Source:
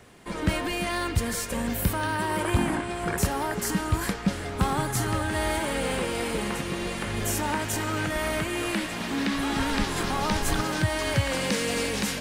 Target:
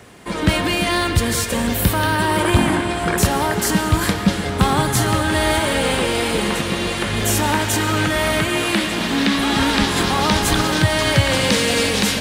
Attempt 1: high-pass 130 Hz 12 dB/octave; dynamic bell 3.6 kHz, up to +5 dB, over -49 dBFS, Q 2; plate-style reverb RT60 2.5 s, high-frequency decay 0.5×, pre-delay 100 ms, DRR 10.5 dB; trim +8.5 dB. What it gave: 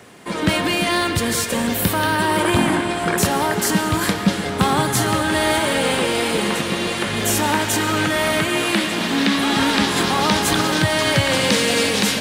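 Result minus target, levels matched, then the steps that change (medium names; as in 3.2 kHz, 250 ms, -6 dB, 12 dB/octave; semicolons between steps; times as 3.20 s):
125 Hz band -3.5 dB
change: high-pass 47 Hz 12 dB/octave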